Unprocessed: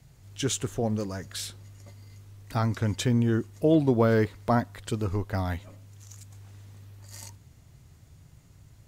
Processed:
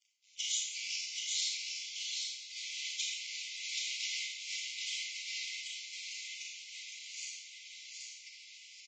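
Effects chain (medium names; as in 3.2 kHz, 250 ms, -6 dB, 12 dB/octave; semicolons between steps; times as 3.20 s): gate -46 dBFS, range -11 dB; comb 2.4 ms, depth 31%; in parallel at -1 dB: compression 8:1, threshold -33 dBFS, peak gain reduction 16 dB; on the sum: flange 1.8 Hz, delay 4.4 ms, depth 8.6 ms, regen +90%; companded quantiser 4-bit; Schroeder reverb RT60 0.73 s, combs from 27 ms, DRR -2 dB; ever faster or slower copies 258 ms, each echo -4 st, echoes 3, each echo -6 dB; brick-wall FIR high-pass 2 kHz; feedback delay 778 ms, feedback 15%, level -3.5 dB; trim -4.5 dB; Vorbis 32 kbps 16 kHz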